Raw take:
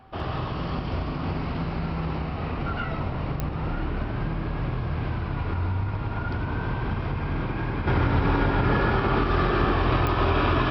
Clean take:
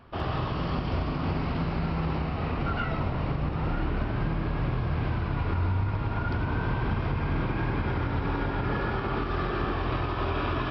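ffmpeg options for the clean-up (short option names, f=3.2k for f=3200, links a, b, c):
-af "adeclick=t=4,bandreject=f=770:w=30,asetnsamples=n=441:p=0,asendcmd='7.87 volume volume -6.5dB',volume=0dB"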